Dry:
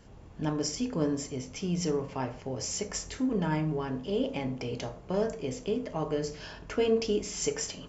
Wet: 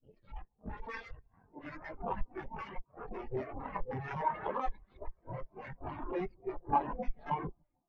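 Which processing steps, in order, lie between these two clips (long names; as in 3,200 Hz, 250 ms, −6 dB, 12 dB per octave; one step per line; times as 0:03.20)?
played backwards from end to start
in parallel at +1 dB: downward compressor 16 to 1, threshold −37 dBFS, peak gain reduction 17 dB
on the sum: wrap-around overflow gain 25.5 dB
auto-filter low-pass square 1.3 Hz 990–2,100 Hz
harmonic generator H 3 −8 dB, 5 −33 dB, 7 −37 dB, 8 −17 dB, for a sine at −17.5 dBFS
on a send: delay that swaps between a low-pass and a high-pass 151 ms, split 1,200 Hz, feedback 89%, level −13 dB
on the sum: every bin expanded away from the loudest bin 4 to 1
level +1 dB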